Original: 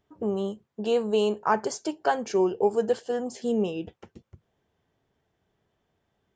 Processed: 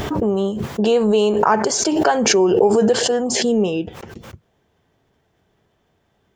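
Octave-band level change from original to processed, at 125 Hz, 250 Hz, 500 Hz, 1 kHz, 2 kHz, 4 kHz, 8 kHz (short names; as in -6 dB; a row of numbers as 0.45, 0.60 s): +12.0, +11.0, +9.0, +8.5, +10.5, +15.5, +20.0 dB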